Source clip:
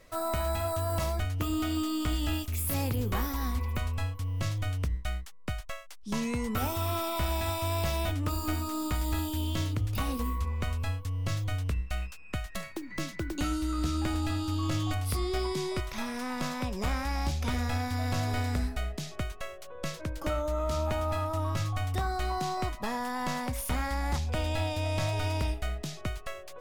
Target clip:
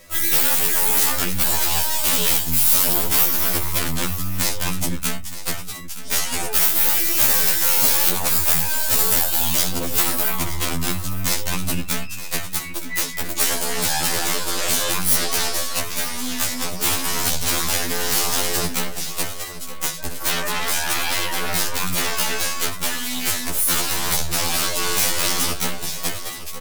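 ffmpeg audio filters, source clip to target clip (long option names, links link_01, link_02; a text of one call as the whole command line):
ffmpeg -i in.wav -filter_complex "[0:a]areverse,acompressor=mode=upward:threshold=-48dB:ratio=2.5,areverse,aeval=exprs='0.0891*(cos(1*acos(clip(val(0)/0.0891,-1,1)))-cos(1*PI/2))+0.0282*(cos(2*acos(clip(val(0)/0.0891,-1,1)))-cos(2*PI/2))+0.0398*(cos(3*acos(clip(val(0)/0.0891,-1,1)))-cos(3*PI/2))+0.00141*(cos(5*acos(clip(val(0)/0.0891,-1,1)))-cos(5*PI/2))':channel_layout=same,aeval=exprs='0.126*sin(PI/2*5.62*val(0)/0.126)':channel_layout=same,asplit=2[link_01][link_02];[link_02]aecho=0:1:918:0.2[link_03];[link_01][link_03]amix=inputs=2:normalize=0,crystalizer=i=2.5:c=0,afftfilt=real='re*2*eq(mod(b,4),0)':imag='im*2*eq(mod(b,4),0)':win_size=2048:overlap=0.75,volume=1.5dB" out.wav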